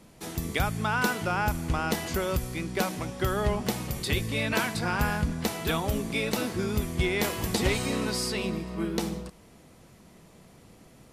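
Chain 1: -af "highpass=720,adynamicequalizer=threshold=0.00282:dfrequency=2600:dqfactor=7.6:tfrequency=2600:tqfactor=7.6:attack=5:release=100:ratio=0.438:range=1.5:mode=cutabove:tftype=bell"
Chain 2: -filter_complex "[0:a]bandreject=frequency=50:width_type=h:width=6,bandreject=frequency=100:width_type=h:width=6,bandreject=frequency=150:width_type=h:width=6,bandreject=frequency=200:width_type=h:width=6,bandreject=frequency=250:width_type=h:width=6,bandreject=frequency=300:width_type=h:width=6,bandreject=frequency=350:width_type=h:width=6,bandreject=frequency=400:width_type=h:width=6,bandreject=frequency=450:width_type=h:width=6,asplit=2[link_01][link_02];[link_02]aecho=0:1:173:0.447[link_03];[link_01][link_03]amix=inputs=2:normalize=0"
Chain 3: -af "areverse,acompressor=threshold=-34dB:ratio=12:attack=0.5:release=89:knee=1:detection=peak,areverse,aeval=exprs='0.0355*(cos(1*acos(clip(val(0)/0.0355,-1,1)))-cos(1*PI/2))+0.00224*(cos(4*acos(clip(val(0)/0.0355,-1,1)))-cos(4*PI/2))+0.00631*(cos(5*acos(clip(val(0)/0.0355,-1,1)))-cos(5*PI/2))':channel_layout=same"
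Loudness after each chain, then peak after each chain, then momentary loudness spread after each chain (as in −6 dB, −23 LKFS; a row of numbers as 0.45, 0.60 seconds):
−32.5, −28.5, −37.5 LKFS; −9.0, −11.0, −29.0 dBFS; 9, 5, 12 LU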